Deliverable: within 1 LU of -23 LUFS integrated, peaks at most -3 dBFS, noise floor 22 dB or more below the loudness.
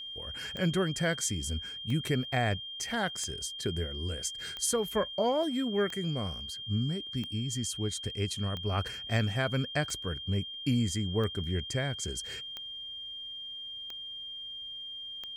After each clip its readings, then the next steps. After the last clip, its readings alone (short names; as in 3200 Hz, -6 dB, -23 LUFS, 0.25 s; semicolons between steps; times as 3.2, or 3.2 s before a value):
clicks 12; steady tone 3200 Hz; tone level -39 dBFS; loudness -32.5 LUFS; peak -18.0 dBFS; loudness target -23.0 LUFS
-> de-click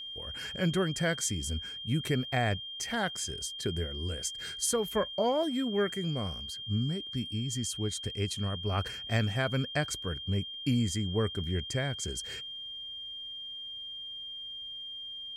clicks 0; steady tone 3200 Hz; tone level -39 dBFS
-> notch 3200 Hz, Q 30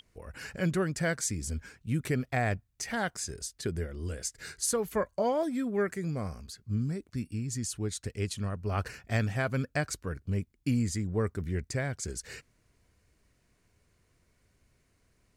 steady tone none; loudness -33.0 LUFS; peak -18.5 dBFS; loudness target -23.0 LUFS
-> gain +10 dB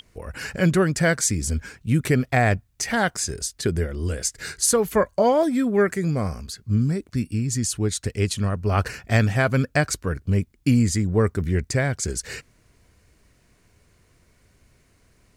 loudness -23.0 LUFS; peak -8.5 dBFS; noise floor -61 dBFS